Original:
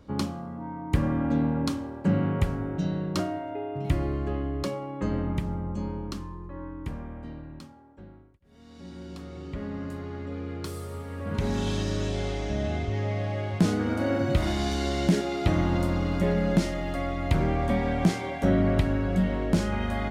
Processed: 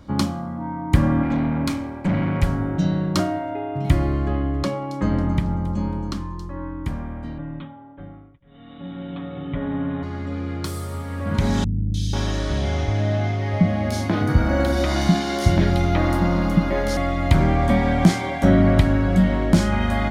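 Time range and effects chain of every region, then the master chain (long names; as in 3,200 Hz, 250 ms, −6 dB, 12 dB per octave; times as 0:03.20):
0:01.23–0:02.43: parametric band 2,300 Hz +12.5 dB 0.3 octaves + tube saturation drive 24 dB, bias 0.4
0:04.26–0:06.57: high-shelf EQ 6,500 Hz −8.5 dB + delay with a high-pass on its return 274 ms, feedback 36%, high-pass 4,500 Hz, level −9 dB
0:07.38–0:10.03: Chebyshev low-pass filter 3,700 Hz, order 8 + comb filter 7 ms, depth 88%
0:11.64–0:16.97: parametric band 7,700 Hz −7.5 dB 0.28 octaves + three-band delay without the direct sound lows, highs, mids 300/490 ms, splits 230/3,400 Hz
whole clip: parametric band 440 Hz −9.5 dB 0.35 octaves; notch filter 2,700 Hz, Q 13; level +8 dB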